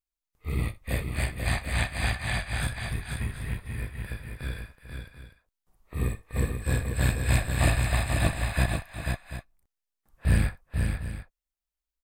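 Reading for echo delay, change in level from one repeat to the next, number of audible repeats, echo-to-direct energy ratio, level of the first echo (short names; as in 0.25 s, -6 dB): 63 ms, no steady repeat, 3, -4.0 dB, -18.5 dB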